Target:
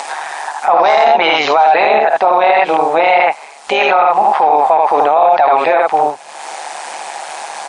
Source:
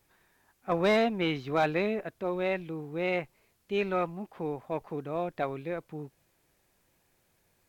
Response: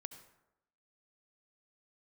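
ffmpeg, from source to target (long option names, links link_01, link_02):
-filter_complex "[0:a]asplit=2[link_01][link_02];[link_02]aecho=0:1:51|78:0.282|0.708[link_03];[link_01][link_03]amix=inputs=2:normalize=0,tremolo=f=150:d=0.75,highpass=frequency=790:width_type=q:width=5.3,acompressor=mode=upward:threshold=-45dB:ratio=2.5,alimiter=level_in=33.5dB:limit=-1dB:release=50:level=0:latency=1,volume=-1dB" -ar 22050 -c:a wmav2 -b:a 64k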